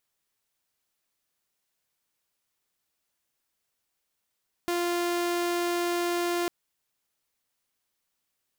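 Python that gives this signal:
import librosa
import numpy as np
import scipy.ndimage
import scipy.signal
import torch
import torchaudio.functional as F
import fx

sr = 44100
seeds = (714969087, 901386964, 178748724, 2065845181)

y = 10.0 ** (-23.0 / 20.0) * (2.0 * np.mod(348.0 * (np.arange(round(1.8 * sr)) / sr), 1.0) - 1.0)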